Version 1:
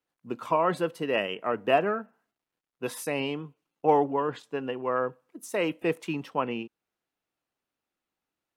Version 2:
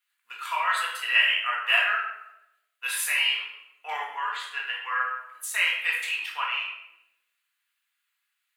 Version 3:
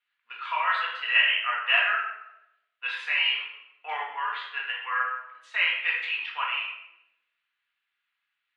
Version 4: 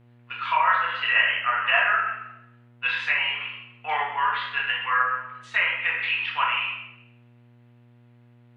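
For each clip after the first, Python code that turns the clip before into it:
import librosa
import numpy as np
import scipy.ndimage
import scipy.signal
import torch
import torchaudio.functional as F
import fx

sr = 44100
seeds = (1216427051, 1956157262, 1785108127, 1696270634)

y1 = scipy.signal.sosfilt(scipy.signal.butter(4, 1500.0, 'highpass', fs=sr, output='sos'), x)
y1 = fx.peak_eq(y1, sr, hz=5500.0, db=-9.0, octaves=0.46)
y1 = fx.room_shoebox(y1, sr, seeds[0], volume_m3=280.0, walls='mixed', distance_m=1.8)
y1 = y1 * librosa.db_to_amplitude(8.0)
y2 = scipy.signal.sosfilt(scipy.signal.butter(4, 3600.0, 'lowpass', fs=sr, output='sos'), y1)
y3 = fx.env_lowpass_down(y2, sr, base_hz=1700.0, full_db=-23.0)
y3 = fx.dmg_buzz(y3, sr, base_hz=120.0, harmonics=21, level_db=-62.0, tilt_db=-8, odd_only=False)
y3 = fx.rev_schroeder(y3, sr, rt60_s=0.45, comb_ms=26, drr_db=11.0)
y3 = y3 * librosa.db_to_amplitude(6.0)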